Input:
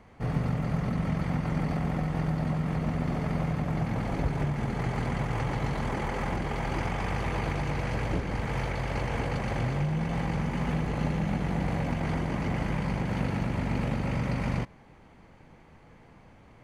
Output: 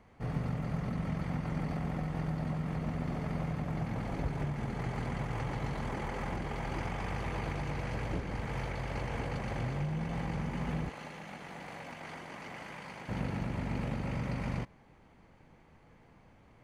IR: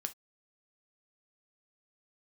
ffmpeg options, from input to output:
-filter_complex "[0:a]asettb=1/sr,asplit=3[s0][s1][s2];[s0]atrim=end=10.894[s3];[s1]atrim=start=10.89:end=13.09,asetpts=PTS-STARTPTS,afade=t=in:d=0.004:c=qsin,afade=t=out:st=2.196:d=0.004:c=qsin,highpass=f=990:p=1[s4];[s2]atrim=start=13.086[s5];[s3][s4]acrossfade=d=0.004:c1=hsin:c2=qsin[s6];[s6][s5]acrossfade=d=0.004:c1=qsin:c2=hsin,volume=0.501"

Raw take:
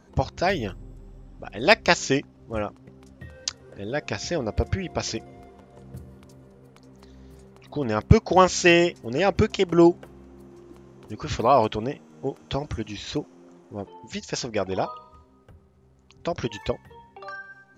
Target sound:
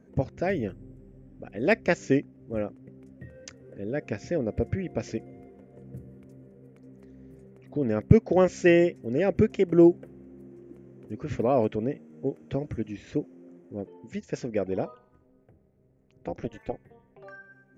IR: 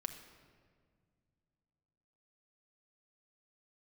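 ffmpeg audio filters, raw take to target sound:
-filter_complex "[0:a]equalizer=f=125:t=o:w=1:g=8,equalizer=f=250:t=o:w=1:g=10,equalizer=f=500:t=o:w=1:g=10,equalizer=f=1000:t=o:w=1:g=-8,equalizer=f=2000:t=o:w=1:g=9,equalizer=f=4000:t=o:w=1:g=-12,asettb=1/sr,asplit=3[s0][s1][s2];[s0]atrim=end=14.954[s3];[s1]atrim=start=14.95:end=17.24,asetpts=PTS-STARTPTS,afade=t=in:d=0.004:c=qsin,afade=t=out:st=2.286:d=0.004:c=qsin,tremolo=f=240:d=0.919[s4];[s2]atrim=start=17.236[s5];[s3][s4]acrossfade=d=0.004:c1=hsin:c2=qsin[s6];[s6][s5]acrossfade=d=0.004:c1=qsin:c2=hsin,volume=0.282"

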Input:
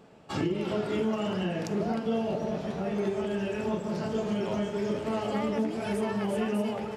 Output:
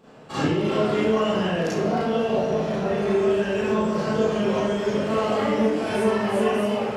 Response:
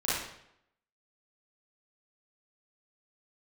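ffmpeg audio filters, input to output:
-filter_complex "[0:a]lowshelf=f=160:g=-3[s0];[1:a]atrim=start_sample=2205[s1];[s0][s1]afir=irnorm=-1:irlink=0"

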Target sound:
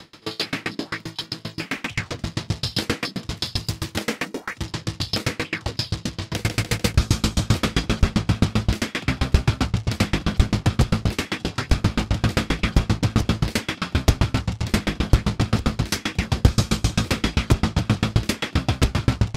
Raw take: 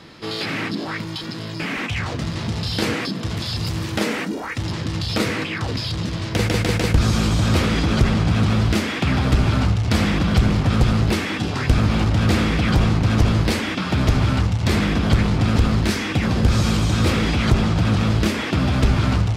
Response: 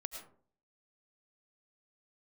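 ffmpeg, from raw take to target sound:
-filter_complex "[0:a]highshelf=f=4600:g=10,asplit=2[s0][s1];[1:a]atrim=start_sample=2205,lowpass=7800[s2];[s1][s2]afir=irnorm=-1:irlink=0,volume=0.376[s3];[s0][s3]amix=inputs=2:normalize=0,aeval=exprs='val(0)*pow(10,-33*if(lt(mod(7.6*n/s,1),2*abs(7.6)/1000),1-mod(7.6*n/s,1)/(2*abs(7.6)/1000),(mod(7.6*n/s,1)-2*abs(7.6)/1000)/(1-2*abs(7.6)/1000))/20)':c=same,volume=1.33"

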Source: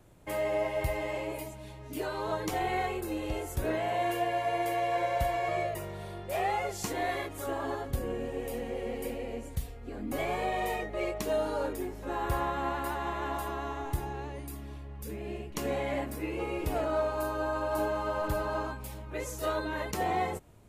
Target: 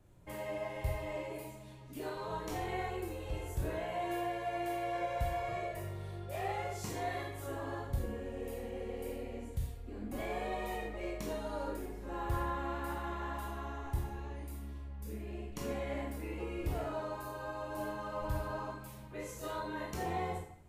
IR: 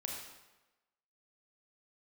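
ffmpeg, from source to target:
-filter_complex "[0:a]lowshelf=f=170:g=9[s0];[1:a]atrim=start_sample=2205,asetrate=74970,aresample=44100[s1];[s0][s1]afir=irnorm=-1:irlink=0,volume=0.75"

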